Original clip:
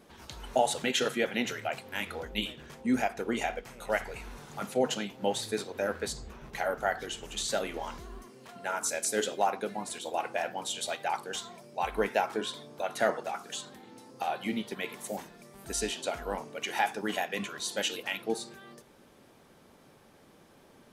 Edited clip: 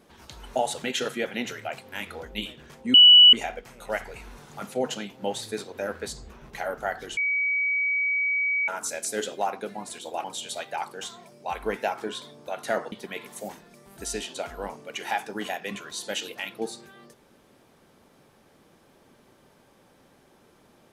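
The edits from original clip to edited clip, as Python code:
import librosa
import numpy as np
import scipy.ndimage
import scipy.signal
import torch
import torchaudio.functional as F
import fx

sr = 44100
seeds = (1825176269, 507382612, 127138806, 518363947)

y = fx.edit(x, sr, fx.bleep(start_s=2.94, length_s=0.39, hz=2950.0, db=-8.5),
    fx.bleep(start_s=7.17, length_s=1.51, hz=2270.0, db=-22.0),
    fx.cut(start_s=10.24, length_s=0.32),
    fx.cut(start_s=13.24, length_s=1.36), tone=tone)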